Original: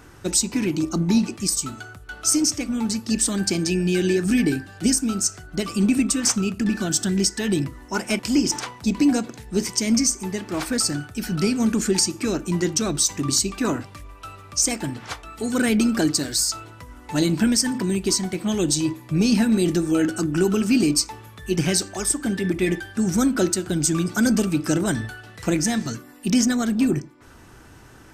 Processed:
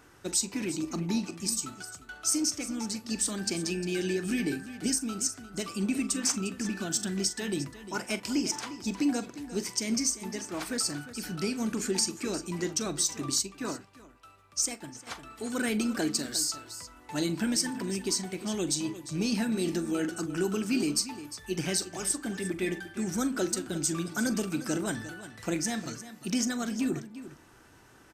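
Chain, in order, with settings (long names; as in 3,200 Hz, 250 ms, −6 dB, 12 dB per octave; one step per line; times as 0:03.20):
low-shelf EQ 170 Hz −9 dB
on a send: multi-tap delay 42/353 ms −15/−13.5 dB
0:13.38–0:15.07: on the sum: expander for the loud parts 1.5 to 1, over −34 dBFS
level −7.5 dB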